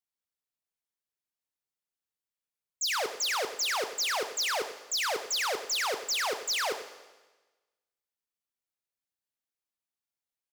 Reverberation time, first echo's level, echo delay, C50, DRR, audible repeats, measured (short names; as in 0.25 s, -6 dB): 1.2 s, -13.5 dB, 95 ms, 9.5 dB, 8.0 dB, 1